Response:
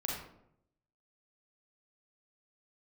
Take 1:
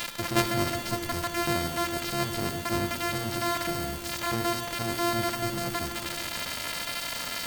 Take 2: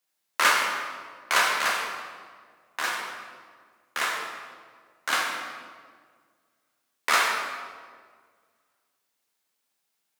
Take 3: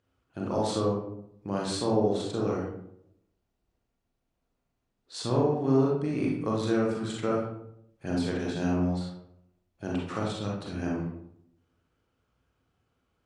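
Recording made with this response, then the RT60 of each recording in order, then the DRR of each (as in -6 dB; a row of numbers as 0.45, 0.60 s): 3; 2.8, 1.8, 0.75 s; 5.0, -3.0, -3.5 dB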